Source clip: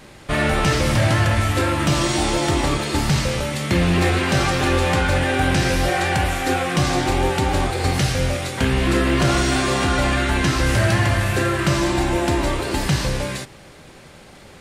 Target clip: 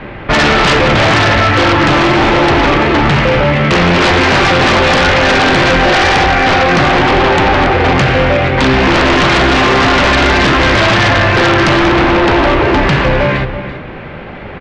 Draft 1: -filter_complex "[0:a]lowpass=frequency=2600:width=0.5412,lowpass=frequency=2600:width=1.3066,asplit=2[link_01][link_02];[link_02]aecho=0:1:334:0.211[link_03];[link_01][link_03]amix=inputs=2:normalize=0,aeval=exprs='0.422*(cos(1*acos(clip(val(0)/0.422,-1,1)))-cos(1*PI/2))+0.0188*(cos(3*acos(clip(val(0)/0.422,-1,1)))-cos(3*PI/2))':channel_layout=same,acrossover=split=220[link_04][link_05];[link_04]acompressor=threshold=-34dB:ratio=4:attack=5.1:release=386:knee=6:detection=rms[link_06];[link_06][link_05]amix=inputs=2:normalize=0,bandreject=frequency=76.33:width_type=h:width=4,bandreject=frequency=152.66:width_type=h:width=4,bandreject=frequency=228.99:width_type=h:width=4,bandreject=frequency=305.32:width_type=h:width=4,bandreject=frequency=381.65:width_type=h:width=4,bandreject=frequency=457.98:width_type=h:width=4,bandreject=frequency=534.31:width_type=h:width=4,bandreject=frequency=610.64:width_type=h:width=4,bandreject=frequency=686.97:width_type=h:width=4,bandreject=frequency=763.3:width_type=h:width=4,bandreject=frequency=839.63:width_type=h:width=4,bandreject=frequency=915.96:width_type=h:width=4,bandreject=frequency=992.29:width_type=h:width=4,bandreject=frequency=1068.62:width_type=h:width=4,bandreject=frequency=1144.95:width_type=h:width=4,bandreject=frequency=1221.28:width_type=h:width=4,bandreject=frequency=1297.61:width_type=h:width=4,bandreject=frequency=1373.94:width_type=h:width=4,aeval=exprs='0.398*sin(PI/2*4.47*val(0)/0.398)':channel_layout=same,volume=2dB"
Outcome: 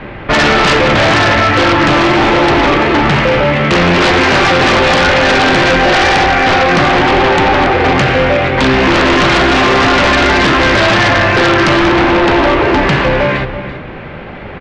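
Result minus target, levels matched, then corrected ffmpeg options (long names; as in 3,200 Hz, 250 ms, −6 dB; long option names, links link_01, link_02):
downward compressor: peak gain reduction +5 dB
-filter_complex "[0:a]lowpass=frequency=2600:width=0.5412,lowpass=frequency=2600:width=1.3066,asplit=2[link_01][link_02];[link_02]aecho=0:1:334:0.211[link_03];[link_01][link_03]amix=inputs=2:normalize=0,aeval=exprs='0.422*(cos(1*acos(clip(val(0)/0.422,-1,1)))-cos(1*PI/2))+0.0188*(cos(3*acos(clip(val(0)/0.422,-1,1)))-cos(3*PI/2))':channel_layout=same,acrossover=split=220[link_04][link_05];[link_04]acompressor=threshold=-27.5dB:ratio=4:attack=5.1:release=386:knee=6:detection=rms[link_06];[link_06][link_05]amix=inputs=2:normalize=0,bandreject=frequency=76.33:width_type=h:width=4,bandreject=frequency=152.66:width_type=h:width=4,bandreject=frequency=228.99:width_type=h:width=4,bandreject=frequency=305.32:width_type=h:width=4,bandreject=frequency=381.65:width_type=h:width=4,bandreject=frequency=457.98:width_type=h:width=4,bandreject=frequency=534.31:width_type=h:width=4,bandreject=frequency=610.64:width_type=h:width=4,bandreject=frequency=686.97:width_type=h:width=4,bandreject=frequency=763.3:width_type=h:width=4,bandreject=frequency=839.63:width_type=h:width=4,bandreject=frequency=915.96:width_type=h:width=4,bandreject=frequency=992.29:width_type=h:width=4,bandreject=frequency=1068.62:width_type=h:width=4,bandreject=frequency=1144.95:width_type=h:width=4,bandreject=frequency=1221.28:width_type=h:width=4,bandreject=frequency=1297.61:width_type=h:width=4,bandreject=frequency=1373.94:width_type=h:width=4,aeval=exprs='0.398*sin(PI/2*4.47*val(0)/0.398)':channel_layout=same,volume=2dB"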